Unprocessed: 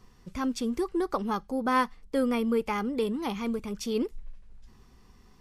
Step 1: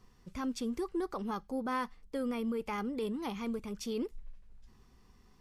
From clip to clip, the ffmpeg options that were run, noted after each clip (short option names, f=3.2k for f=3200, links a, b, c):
-af "alimiter=limit=-22dB:level=0:latency=1:release=24,volume=-5.5dB"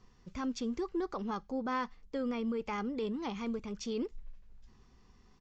-af "aresample=16000,aresample=44100"